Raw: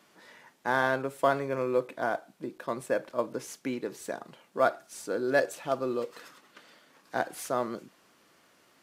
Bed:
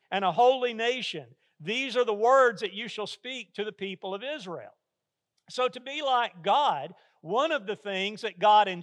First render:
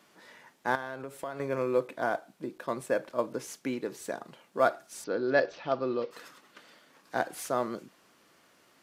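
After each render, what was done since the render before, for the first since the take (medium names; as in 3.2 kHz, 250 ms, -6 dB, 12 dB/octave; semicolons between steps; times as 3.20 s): 0.75–1.40 s: compression 3:1, threshold -37 dBFS; 5.04–6.11 s: steep low-pass 5.4 kHz 48 dB/octave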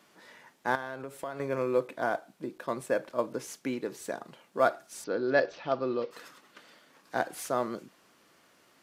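no audible change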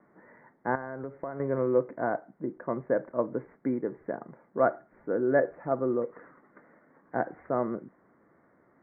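steep low-pass 2.1 kHz 96 dB/octave; tilt shelf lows +5.5 dB, about 780 Hz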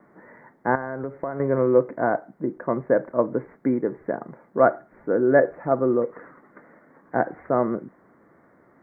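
trim +7 dB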